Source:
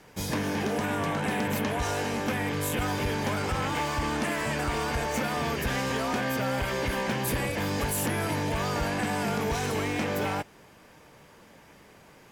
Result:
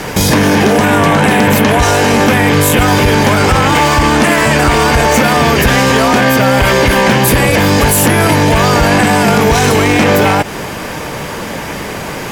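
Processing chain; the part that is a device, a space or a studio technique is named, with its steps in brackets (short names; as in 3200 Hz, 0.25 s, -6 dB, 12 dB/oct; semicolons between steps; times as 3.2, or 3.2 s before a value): loud club master (compressor 2:1, threshold -32 dBFS, peak gain reduction 4.5 dB; hard clip -24.5 dBFS, distortion -42 dB; maximiser +33 dB); gain -1 dB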